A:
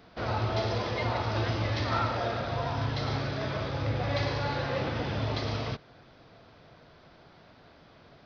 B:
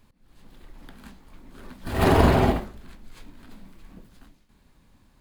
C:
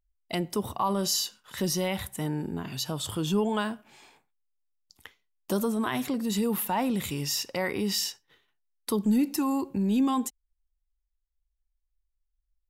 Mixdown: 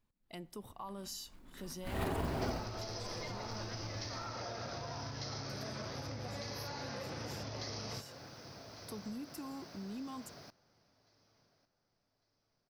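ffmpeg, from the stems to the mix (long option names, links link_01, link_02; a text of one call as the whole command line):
ffmpeg -i stem1.wav -i stem2.wav -i stem3.wav -filter_complex "[0:a]highpass=76,acompressor=threshold=-33dB:ratio=6,aexciter=amount=11.2:drive=4.4:freq=5200,adelay=2250,volume=1dB,asplit=2[link_01][link_02];[link_02]volume=-21.5dB[link_03];[1:a]acompressor=threshold=-22dB:ratio=10,acrusher=bits=6:mode=log:mix=0:aa=0.000001,volume=-10.5dB,afade=type=in:start_time=0.76:duration=0.69:silence=0.281838[link_04];[2:a]volume=-17dB[link_05];[link_01][link_05]amix=inputs=2:normalize=0,acompressor=threshold=-40dB:ratio=6,volume=0dB[link_06];[link_03]aecho=0:1:1151|2302|3453|4604|5755:1|0.33|0.109|0.0359|0.0119[link_07];[link_04][link_06][link_07]amix=inputs=3:normalize=0" out.wav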